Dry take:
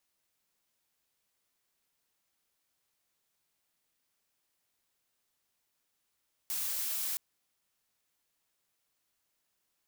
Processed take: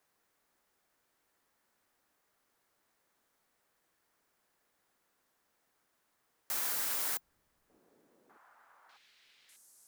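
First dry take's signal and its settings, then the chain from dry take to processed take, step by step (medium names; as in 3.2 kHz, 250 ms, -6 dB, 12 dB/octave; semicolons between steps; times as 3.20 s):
noise blue, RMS -34.5 dBFS 0.67 s
high-order bell 870 Hz +9.5 dB 2.8 oct; repeats whose band climbs or falls 598 ms, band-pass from 170 Hz, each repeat 1.4 oct, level -9.5 dB; frequency shift -160 Hz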